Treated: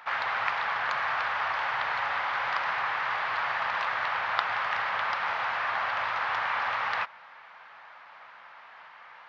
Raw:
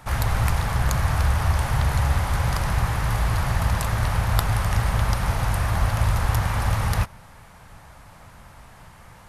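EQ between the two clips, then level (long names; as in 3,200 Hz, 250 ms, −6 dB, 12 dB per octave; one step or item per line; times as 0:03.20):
Gaussian smoothing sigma 2.8 samples
high-pass filter 1,200 Hz 12 dB per octave
+6.5 dB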